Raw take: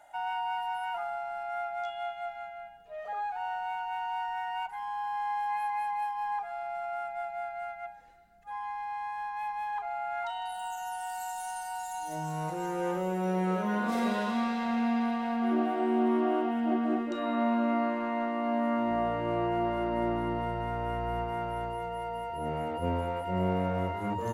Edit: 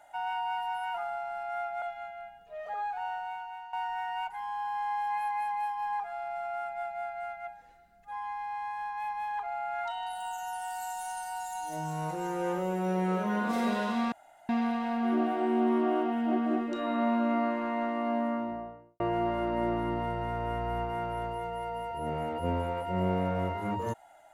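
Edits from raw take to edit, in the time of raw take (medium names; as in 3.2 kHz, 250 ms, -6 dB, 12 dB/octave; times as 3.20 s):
1.82–2.21 s: delete
3.41–4.12 s: fade out, to -13 dB
14.51–14.88 s: room tone
18.40–19.39 s: studio fade out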